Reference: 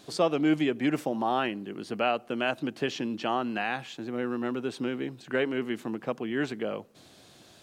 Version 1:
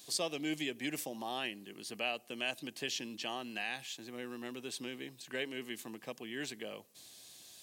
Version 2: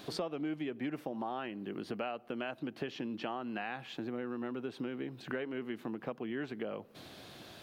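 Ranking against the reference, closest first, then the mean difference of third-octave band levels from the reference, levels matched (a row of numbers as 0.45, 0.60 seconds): 2, 1; 4.0, 7.0 decibels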